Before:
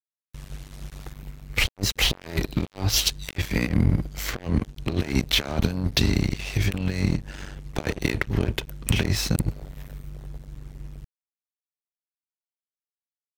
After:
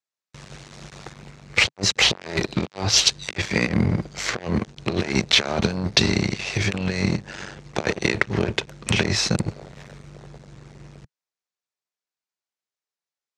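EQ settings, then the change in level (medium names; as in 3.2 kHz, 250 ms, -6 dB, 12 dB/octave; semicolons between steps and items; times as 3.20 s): cabinet simulation 150–7400 Hz, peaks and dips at 150 Hz -4 dB, 270 Hz -9 dB, 3.1 kHz -3 dB; +6.5 dB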